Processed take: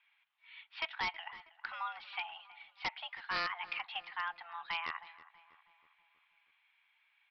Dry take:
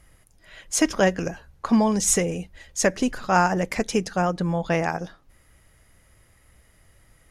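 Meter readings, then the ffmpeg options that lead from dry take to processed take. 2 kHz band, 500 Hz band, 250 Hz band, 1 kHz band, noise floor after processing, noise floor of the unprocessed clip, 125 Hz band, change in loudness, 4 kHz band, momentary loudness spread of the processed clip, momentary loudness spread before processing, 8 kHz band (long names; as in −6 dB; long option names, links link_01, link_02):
−9.5 dB, −30.5 dB, −38.5 dB, −14.5 dB, −74 dBFS, −59 dBFS, −36.0 dB, −16.5 dB, −7.0 dB, 15 LU, 13 LU, below −40 dB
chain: -filter_complex "[0:a]aderivative,highpass=frequency=400:width_type=q:width=0.5412,highpass=frequency=400:width_type=q:width=1.307,lowpass=frequency=2900:width_type=q:width=0.5176,lowpass=frequency=2900:width_type=q:width=0.7071,lowpass=frequency=2900:width_type=q:width=1.932,afreqshift=340,aresample=11025,aeval=exprs='0.0237*(abs(mod(val(0)/0.0237+3,4)-2)-1)':channel_layout=same,aresample=44100,asplit=2[link_01][link_02];[link_02]adelay=321,lowpass=frequency=2400:poles=1,volume=-17dB,asplit=2[link_03][link_04];[link_04]adelay=321,lowpass=frequency=2400:poles=1,volume=0.55,asplit=2[link_05][link_06];[link_06]adelay=321,lowpass=frequency=2400:poles=1,volume=0.55,asplit=2[link_07][link_08];[link_08]adelay=321,lowpass=frequency=2400:poles=1,volume=0.55,asplit=2[link_09][link_10];[link_10]adelay=321,lowpass=frequency=2400:poles=1,volume=0.55[link_11];[link_01][link_03][link_05][link_07][link_09][link_11]amix=inputs=6:normalize=0,volume=4.5dB"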